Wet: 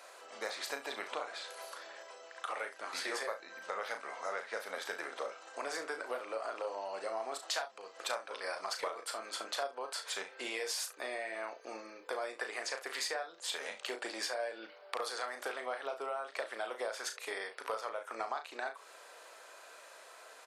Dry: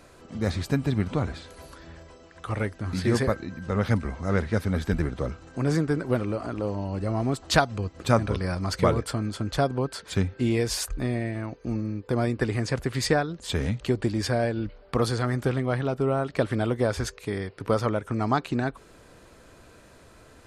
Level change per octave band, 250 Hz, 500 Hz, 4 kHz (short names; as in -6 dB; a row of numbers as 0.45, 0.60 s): -27.0, -12.5, -5.0 dB